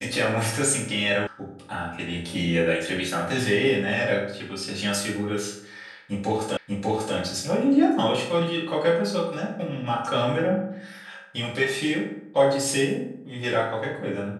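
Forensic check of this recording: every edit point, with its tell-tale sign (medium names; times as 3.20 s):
1.27 s: sound stops dead
6.57 s: repeat of the last 0.59 s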